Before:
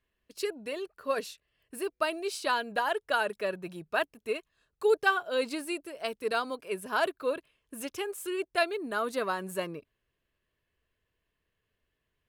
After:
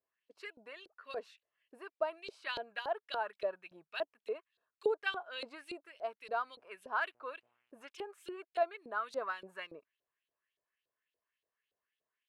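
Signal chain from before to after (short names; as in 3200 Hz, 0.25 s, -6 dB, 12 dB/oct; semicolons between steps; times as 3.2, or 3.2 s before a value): 6.45–7.87 buzz 120 Hz, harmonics 25, -67 dBFS -5 dB/oct; LFO band-pass saw up 3.5 Hz 490–4100 Hz; gain -1 dB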